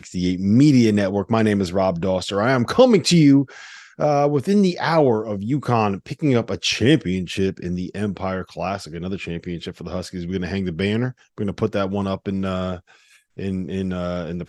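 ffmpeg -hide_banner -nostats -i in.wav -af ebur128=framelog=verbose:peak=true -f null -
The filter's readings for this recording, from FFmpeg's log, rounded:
Integrated loudness:
  I:         -20.5 LUFS
  Threshold: -30.7 LUFS
Loudness range:
  LRA:         9.0 LU
  Threshold: -40.8 LUFS
  LRA low:   -26.5 LUFS
  LRA high:  -17.6 LUFS
True peak:
  Peak:       -1.2 dBFS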